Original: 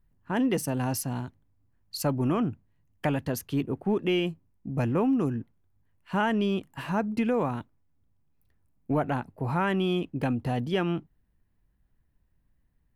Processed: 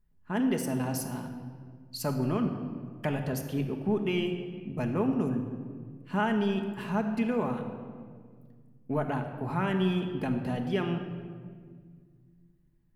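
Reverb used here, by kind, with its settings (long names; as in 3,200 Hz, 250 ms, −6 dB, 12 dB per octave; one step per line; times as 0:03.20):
rectangular room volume 2,800 cubic metres, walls mixed, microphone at 1.4 metres
level −4.5 dB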